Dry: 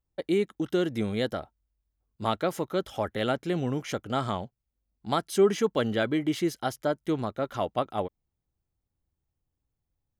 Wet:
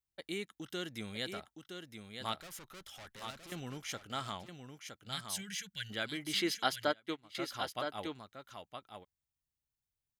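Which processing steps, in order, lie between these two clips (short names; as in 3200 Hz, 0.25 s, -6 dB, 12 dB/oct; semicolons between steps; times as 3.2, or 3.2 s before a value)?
low shelf 100 Hz -9 dB; 2.38–3.52 tube stage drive 37 dB, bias 0.35; 4.65–5.9 spectral gain 210–1400 Hz -24 dB; passive tone stack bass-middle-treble 5-5-5; 6.33–7.17 spectral gain 240–5200 Hz +9 dB; echo 0.966 s -7 dB; 6.89–7.35 upward expander 2.5:1, over -49 dBFS; gain +4.5 dB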